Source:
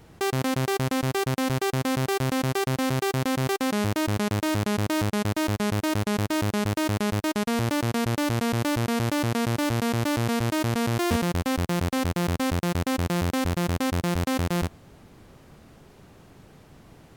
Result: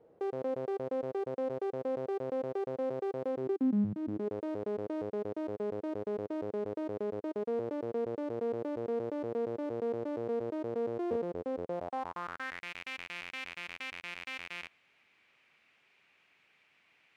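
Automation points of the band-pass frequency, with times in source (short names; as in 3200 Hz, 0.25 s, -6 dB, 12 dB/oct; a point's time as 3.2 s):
band-pass, Q 4
3.3 s 500 Hz
3.9 s 170 Hz
4.33 s 460 Hz
11.62 s 460 Hz
12.69 s 2400 Hz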